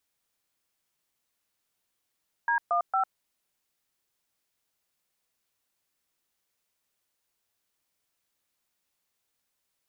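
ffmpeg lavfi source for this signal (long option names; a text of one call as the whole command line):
ffmpeg -f lavfi -i "aevalsrc='0.0562*clip(min(mod(t,0.228),0.101-mod(t,0.228))/0.002,0,1)*(eq(floor(t/0.228),0)*(sin(2*PI*941*mod(t,0.228))+sin(2*PI*1633*mod(t,0.228)))+eq(floor(t/0.228),1)*(sin(2*PI*697*mod(t,0.228))+sin(2*PI*1209*mod(t,0.228)))+eq(floor(t/0.228),2)*(sin(2*PI*770*mod(t,0.228))+sin(2*PI*1336*mod(t,0.228))))':duration=0.684:sample_rate=44100" out.wav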